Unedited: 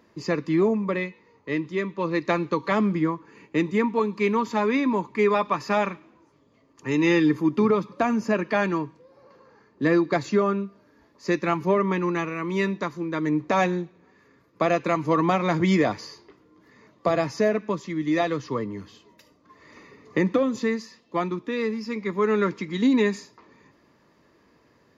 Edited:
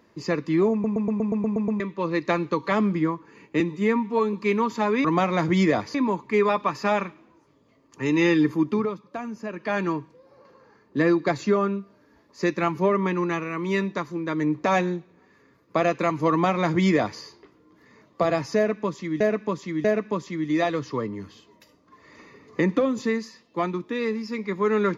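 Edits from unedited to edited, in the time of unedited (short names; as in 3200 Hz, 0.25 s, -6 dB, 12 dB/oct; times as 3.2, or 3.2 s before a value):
0.72 stutter in place 0.12 s, 9 plays
3.6–4.09 stretch 1.5×
7.45–8.74 dip -10 dB, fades 0.37 s
15.16–16.06 copy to 4.8
17.42–18.06 loop, 3 plays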